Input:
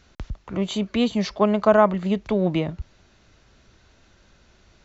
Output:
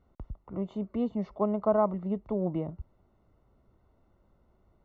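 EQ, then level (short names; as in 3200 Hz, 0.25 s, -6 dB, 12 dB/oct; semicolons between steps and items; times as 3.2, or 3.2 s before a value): polynomial smoothing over 65 samples; -8.5 dB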